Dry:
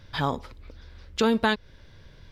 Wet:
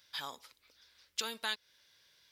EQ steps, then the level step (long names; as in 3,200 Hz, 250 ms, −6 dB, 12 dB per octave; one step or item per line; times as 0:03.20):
first difference
+1.0 dB